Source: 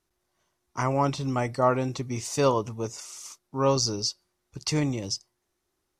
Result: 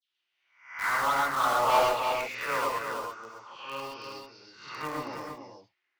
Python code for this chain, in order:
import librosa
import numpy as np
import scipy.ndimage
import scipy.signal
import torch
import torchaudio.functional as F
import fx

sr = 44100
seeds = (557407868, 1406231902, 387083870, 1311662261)

p1 = fx.spec_swells(x, sr, rise_s=0.5)
p2 = fx.env_lowpass_down(p1, sr, base_hz=1800.0, full_db=-20.0)
p3 = scipy.signal.sosfilt(scipy.signal.butter(2, 4500.0, 'lowpass', fs=sr, output='sos'), p2)
p4 = fx.filter_lfo_bandpass(p3, sr, shape='saw_down', hz=0.58, low_hz=860.0, high_hz=3300.0, q=4.8)
p5 = fx.dispersion(p4, sr, late='lows', ms=111.0, hz=1700.0)
p6 = fx.quant_companded(p5, sr, bits=2)
p7 = p5 + (p6 * librosa.db_to_amplitude(-12.0))
p8 = 10.0 ** (-30.5 / 20.0) * np.tanh(p7 / 10.0 ** (-30.5 / 20.0))
p9 = p8 + fx.echo_single(p8, sr, ms=323, db=-6.0, dry=0)
p10 = fx.rev_gated(p9, sr, seeds[0], gate_ms=150, shape='rising', drr_db=-1.0)
y = p10 * librosa.db_to_amplitude(8.0)